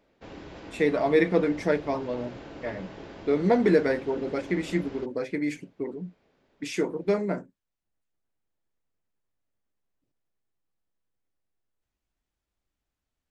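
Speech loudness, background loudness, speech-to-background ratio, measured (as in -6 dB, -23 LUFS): -27.0 LUFS, -43.5 LUFS, 16.5 dB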